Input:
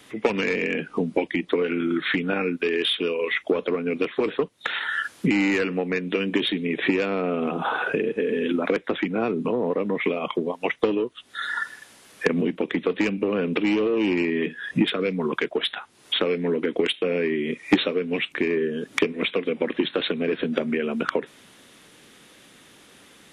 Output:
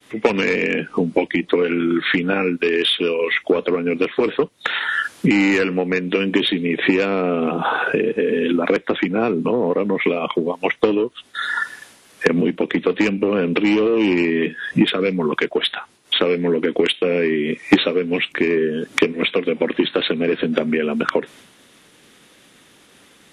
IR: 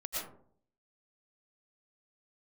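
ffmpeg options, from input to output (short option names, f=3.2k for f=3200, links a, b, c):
-af "agate=range=-33dB:threshold=-46dB:ratio=3:detection=peak,volume=5.5dB"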